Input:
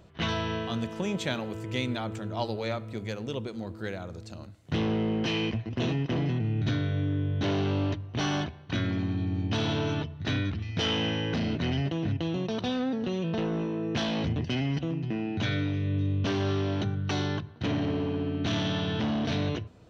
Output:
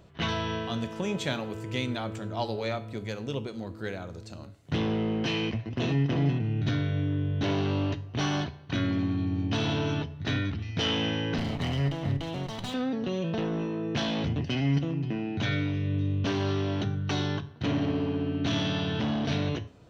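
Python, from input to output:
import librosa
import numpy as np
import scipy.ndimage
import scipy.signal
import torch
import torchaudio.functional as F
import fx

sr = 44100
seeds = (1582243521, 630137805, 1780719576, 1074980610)

y = fx.lower_of_two(x, sr, delay_ms=1.0, at=(11.38, 12.74))
y = fx.comb_fb(y, sr, f0_hz=140.0, decay_s=0.4, harmonics='all', damping=0.0, mix_pct=60)
y = y * 10.0 ** (6.5 / 20.0)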